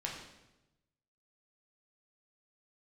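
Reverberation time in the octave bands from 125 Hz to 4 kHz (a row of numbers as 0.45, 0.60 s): 1.4, 1.1, 1.1, 0.90, 0.85, 0.85 s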